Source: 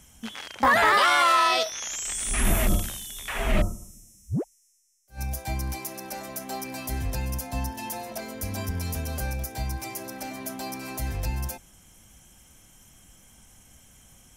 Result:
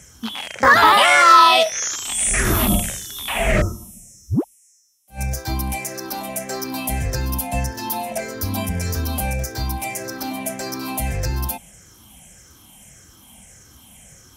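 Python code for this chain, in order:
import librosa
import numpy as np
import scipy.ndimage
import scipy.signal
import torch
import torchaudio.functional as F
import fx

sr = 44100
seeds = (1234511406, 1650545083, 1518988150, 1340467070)

y = fx.spec_ripple(x, sr, per_octave=0.53, drift_hz=-1.7, depth_db=11)
y = scipy.signal.sosfilt(scipy.signal.butter(2, 55.0, 'highpass', fs=sr, output='sos'), y)
y = F.gain(torch.from_numpy(y), 6.5).numpy()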